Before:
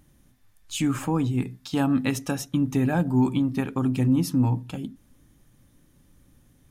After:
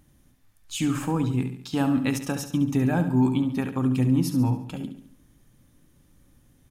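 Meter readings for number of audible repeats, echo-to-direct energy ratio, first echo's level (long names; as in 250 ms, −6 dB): 4, −9.0 dB, −10.0 dB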